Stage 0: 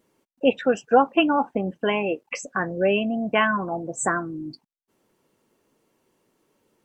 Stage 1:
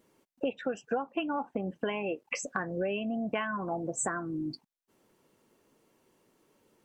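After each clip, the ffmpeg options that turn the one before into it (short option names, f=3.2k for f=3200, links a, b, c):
-af "acompressor=threshold=-29dB:ratio=8"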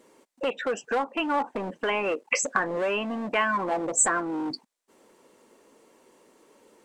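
-filter_complex "[0:a]acrossover=split=1000[a][b];[a]asoftclip=type=hard:threshold=-37dB[c];[c][b]amix=inputs=2:normalize=0,equalizer=f=125:t=o:w=1:g=-5,equalizer=f=250:t=o:w=1:g=7,equalizer=f=500:t=o:w=1:g=10,equalizer=f=1k:t=o:w=1:g=8,equalizer=f=2k:t=o:w=1:g=7,equalizer=f=4k:t=o:w=1:g=5,equalizer=f=8k:t=o:w=1:g=11"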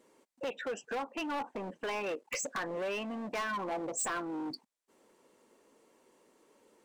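-af "volume=24dB,asoftclip=hard,volume=-24dB,volume=-7.5dB"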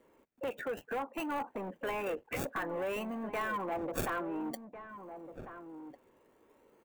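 -filter_complex "[0:a]acrossover=split=350|3200[a][b][c];[c]acrusher=samples=34:mix=1:aa=0.000001:lfo=1:lforange=20.4:lforate=0.55[d];[a][b][d]amix=inputs=3:normalize=0,asplit=2[e][f];[f]adelay=1399,volume=-10dB,highshelf=f=4k:g=-31.5[g];[e][g]amix=inputs=2:normalize=0,aexciter=amount=3.5:drive=2.1:freq=6.6k"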